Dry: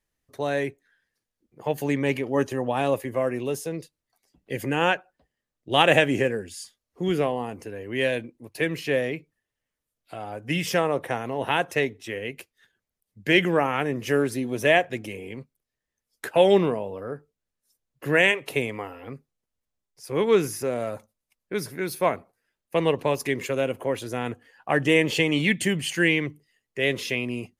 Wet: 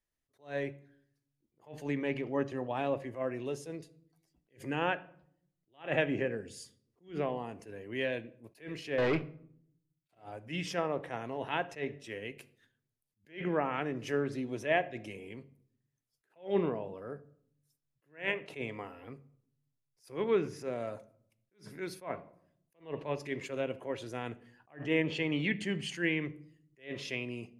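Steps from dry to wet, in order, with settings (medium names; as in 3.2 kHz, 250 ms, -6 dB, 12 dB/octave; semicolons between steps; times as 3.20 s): 8.98–10.15 s: waveshaping leveller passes 5; low-pass that closes with the level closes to 2.7 kHz, closed at -18 dBFS; on a send at -14 dB: reverberation RT60 0.65 s, pre-delay 3 ms; on the sum: attacks held to a fixed rise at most 200 dB/s; trim -9 dB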